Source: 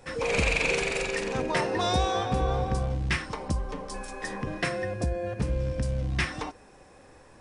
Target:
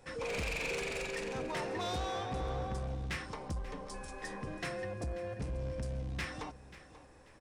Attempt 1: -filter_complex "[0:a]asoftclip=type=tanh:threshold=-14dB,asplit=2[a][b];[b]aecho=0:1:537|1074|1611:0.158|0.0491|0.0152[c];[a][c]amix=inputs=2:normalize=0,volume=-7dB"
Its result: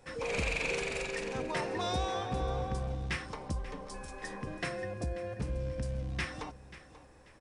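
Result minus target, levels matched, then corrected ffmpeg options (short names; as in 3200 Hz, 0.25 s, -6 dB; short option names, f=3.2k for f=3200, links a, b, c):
soft clip: distortion -15 dB
-filter_complex "[0:a]asoftclip=type=tanh:threshold=-25dB,asplit=2[a][b];[b]aecho=0:1:537|1074|1611:0.158|0.0491|0.0152[c];[a][c]amix=inputs=2:normalize=0,volume=-7dB"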